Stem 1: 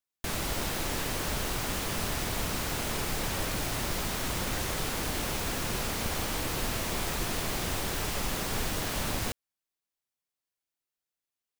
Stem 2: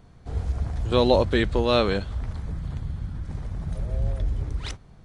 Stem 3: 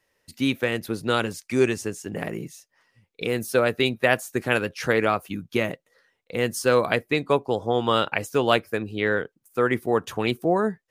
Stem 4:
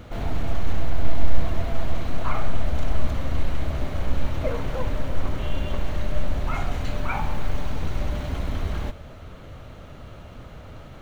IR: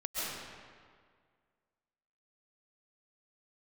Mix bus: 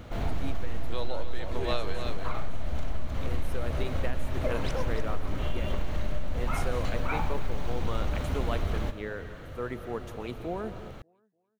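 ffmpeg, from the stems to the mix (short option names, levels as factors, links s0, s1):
-filter_complex "[1:a]highpass=440,volume=0.531,asplit=2[s0][s1];[s1]volume=0.398[s2];[2:a]equalizer=f=2900:w=0.78:g=-5.5,volume=0.2,asplit=3[s3][s4][s5];[s4]volume=0.211[s6];[s5]volume=0.075[s7];[3:a]volume=0.794[s8];[4:a]atrim=start_sample=2205[s9];[s6][s9]afir=irnorm=-1:irlink=0[s10];[s2][s7]amix=inputs=2:normalize=0,aecho=0:1:294|588|882|1176|1470:1|0.33|0.109|0.0359|0.0119[s11];[s0][s3][s8][s10][s11]amix=inputs=5:normalize=0,acompressor=threshold=0.0891:ratio=6"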